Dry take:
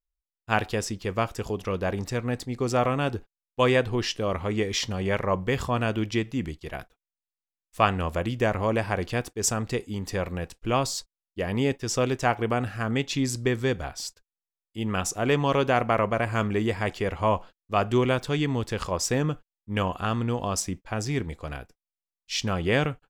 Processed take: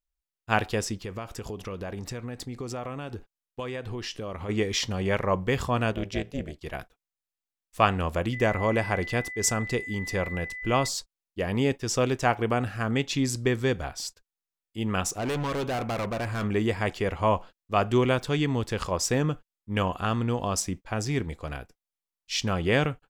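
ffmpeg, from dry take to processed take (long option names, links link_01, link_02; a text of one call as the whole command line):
ffmpeg -i in.wav -filter_complex "[0:a]asplit=3[link_01][link_02][link_03];[link_01]afade=type=out:start_time=1.02:duration=0.02[link_04];[link_02]acompressor=threshold=-31dB:ratio=6:attack=3.2:release=140:knee=1:detection=peak,afade=type=in:start_time=1.02:duration=0.02,afade=type=out:start_time=4.48:duration=0.02[link_05];[link_03]afade=type=in:start_time=4.48:duration=0.02[link_06];[link_04][link_05][link_06]amix=inputs=3:normalize=0,asplit=3[link_07][link_08][link_09];[link_07]afade=type=out:start_time=5.9:duration=0.02[link_10];[link_08]tremolo=f=290:d=0.947,afade=type=in:start_time=5.9:duration=0.02,afade=type=out:start_time=6.6:duration=0.02[link_11];[link_09]afade=type=in:start_time=6.6:duration=0.02[link_12];[link_10][link_11][link_12]amix=inputs=3:normalize=0,asettb=1/sr,asplit=3[link_13][link_14][link_15];[link_13]atrim=end=8.334[link_16];[link_14]atrim=start=8.33:end=10.88,asetpts=PTS-STARTPTS,afade=type=in:duration=0.004:curve=qsin,afade=type=out:start_time=2.546:duration=0.004:curve=qsin,aeval=exprs='val(0)+0.0178*sin(2*PI*2000*n/s)':channel_layout=same[link_17];[link_15]atrim=start=10.876[link_18];[link_16][link_17]acrossfade=duration=0.004:curve1=hsin:curve2=qsin[link_19];[link_19][link_18]acrossfade=duration=0.004:curve1=qsin:curve2=hsin,asettb=1/sr,asplit=3[link_20][link_21][link_22];[link_20]atrim=end=15.084[link_23];[link_21]atrim=start=15.08:end=16.44,asetpts=PTS-STARTPTS,afade=type=in:duration=0.004:curve=qsin,afade=type=out:start_time=1.356:duration=0.004:curve=qsin,asoftclip=type=hard:threshold=-26.5dB[link_24];[link_22]atrim=start=16.436[link_25];[link_23][link_24]acrossfade=duration=0.004:curve1=hsin:curve2=qsin[link_26];[link_26][link_25]acrossfade=duration=0.004:curve1=qsin:curve2=hsin" out.wav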